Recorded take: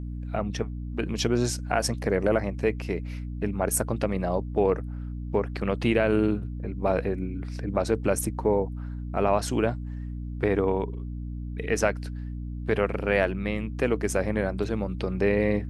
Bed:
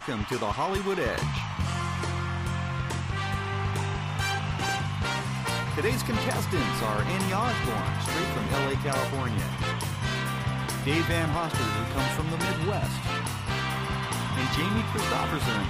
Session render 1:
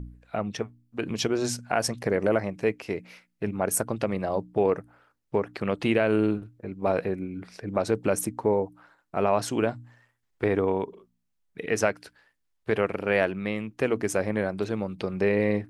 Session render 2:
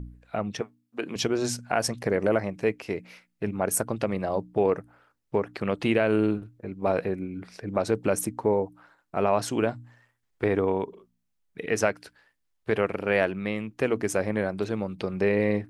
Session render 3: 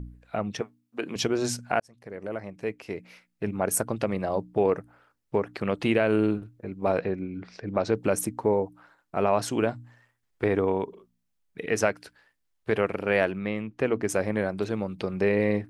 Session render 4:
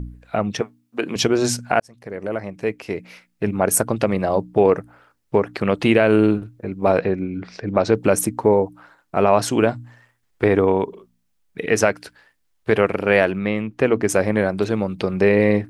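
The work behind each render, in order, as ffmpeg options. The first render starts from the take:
-af "bandreject=f=60:t=h:w=4,bandreject=f=120:t=h:w=4,bandreject=f=180:t=h:w=4,bandreject=f=240:t=h:w=4,bandreject=f=300:t=h:w=4"
-filter_complex "[0:a]asettb=1/sr,asplit=3[s0][s1][s2];[s0]atrim=end=0.614[s3];[s1]atrim=start=0.61:end=1.16,asetpts=PTS-STARTPTS,afade=t=in:d=0.004:c=qsin,afade=t=out:st=0.546:d=0.004:c=qsin,highpass=270[s4];[s2]atrim=start=1.156[s5];[s3][s4]acrossfade=d=0.004:c1=hsin:c2=qsin[s6];[s6][s5]acrossfade=d=0.004:c1=qsin:c2=hsin"
-filter_complex "[0:a]asettb=1/sr,asplit=3[s0][s1][s2];[s0]atrim=end=6.984[s3];[s1]atrim=start=6.98:end=7.97,asetpts=PTS-STARTPTS,afade=t=in:d=0.004:c=qsin,afade=t=out:st=0.986:d=0.004:c=qsin,lowpass=f=6000:w=0.5412,lowpass=f=6000:w=1.3066[s4];[s2]atrim=start=7.966[s5];[s3][s4]acrossfade=d=0.004:c1=hsin:c2=qsin[s6];[s6][s5]acrossfade=d=0.004:c1=qsin:c2=hsin,asettb=1/sr,asplit=3[s7][s8][s9];[s7]atrim=end=13.384[s10];[s8]atrim=start=13.38:end=14.09,asetpts=PTS-STARTPTS,afade=t=in:d=0.004:c=qsin,afade=t=out:st=0.706:d=0.004:c=qsin,aemphasis=mode=reproduction:type=50kf[s11];[s9]atrim=start=14.086[s12];[s10][s11]acrossfade=d=0.004:c1=hsin:c2=qsin[s13];[s13][s12]acrossfade=d=0.004:c1=qsin:c2=hsin,asplit=2[s14][s15];[s14]atrim=end=1.8,asetpts=PTS-STARTPTS,afade=t=out:st=1.796:d=0.004:c=hsin[s16];[s15]atrim=start=1.8,asetpts=PTS-STARTPTS,afade=t=in:d=1.73[s17];[s16][s17]concat=n=2:v=0:a=1"
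-af "volume=2.51,alimiter=limit=0.794:level=0:latency=1"

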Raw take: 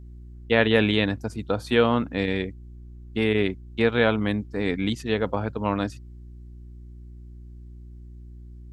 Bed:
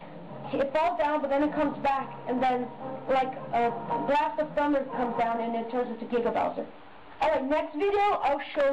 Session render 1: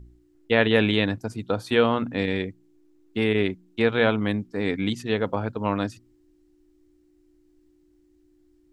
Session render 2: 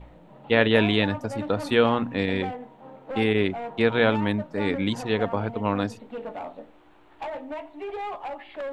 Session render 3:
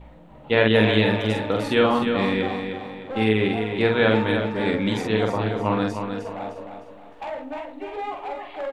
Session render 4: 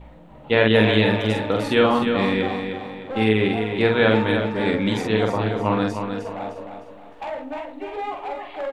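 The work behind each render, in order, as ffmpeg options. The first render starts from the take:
-af "bandreject=f=60:t=h:w=4,bandreject=f=120:t=h:w=4,bandreject=f=180:t=h:w=4,bandreject=f=240:t=h:w=4"
-filter_complex "[1:a]volume=0.376[s0];[0:a][s0]amix=inputs=2:normalize=0"
-filter_complex "[0:a]asplit=2[s0][s1];[s1]adelay=46,volume=0.708[s2];[s0][s2]amix=inputs=2:normalize=0,asplit=2[s3][s4];[s4]aecho=0:1:306|612|918|1224|1530:0.447|0.179|0.0715|0.0286|0.0114[s5];[s3][s5]amix=inputs=2:normalize=0"
-af "volume=1.19,alimiter=limit=0.708:level=0:latency=1"

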